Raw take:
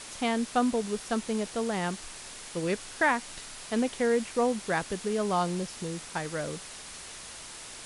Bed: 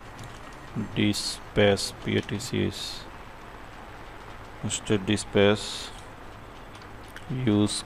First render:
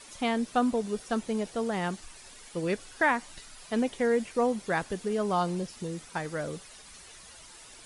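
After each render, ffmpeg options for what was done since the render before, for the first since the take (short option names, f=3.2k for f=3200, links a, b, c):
-af "afftdn=nr=10:nf=-44"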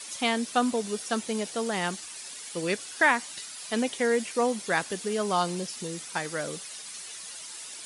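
-af "highpass=160,highshelf=f=2.1k:g=11"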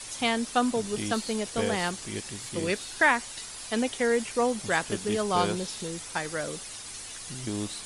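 -filter_complex "[1:a]volume=-10.5dB[a];[0:a][a]amix=inputs=2:normalize=0"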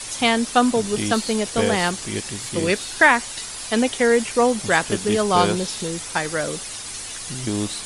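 -af "volume=8dB,alimiter=limit=-2dB:level=0:latency=1"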